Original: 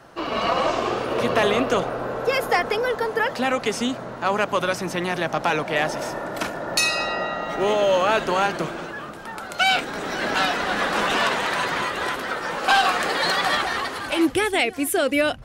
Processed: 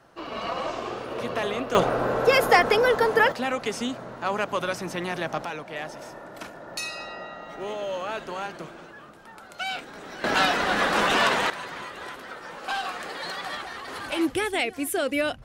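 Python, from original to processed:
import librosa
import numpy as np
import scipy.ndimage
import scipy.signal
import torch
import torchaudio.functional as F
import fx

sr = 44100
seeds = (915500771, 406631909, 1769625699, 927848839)

y = fx.gain(x, sr, db=fx.steps((0.0, -8.5), (1.75, 3.0), (3.32, -5.0), (5.45, -12.0), (10.24, 0.0), (11.5, -12.0), (13.88, -5.0)))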